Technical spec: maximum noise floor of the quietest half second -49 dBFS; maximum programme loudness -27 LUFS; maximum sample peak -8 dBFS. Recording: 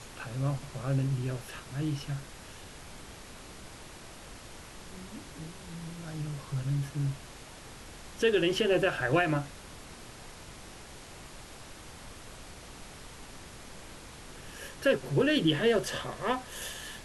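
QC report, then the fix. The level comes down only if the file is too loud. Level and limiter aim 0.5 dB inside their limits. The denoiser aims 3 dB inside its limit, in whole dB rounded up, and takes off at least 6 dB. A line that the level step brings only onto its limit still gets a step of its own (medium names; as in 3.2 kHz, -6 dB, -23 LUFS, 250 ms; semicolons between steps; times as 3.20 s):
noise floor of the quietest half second -47 dBFS: fail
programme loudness -31.0 LUFS: pass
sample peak -14.0 dBFS: pass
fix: noise reduction 6 dB, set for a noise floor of -47 dBFS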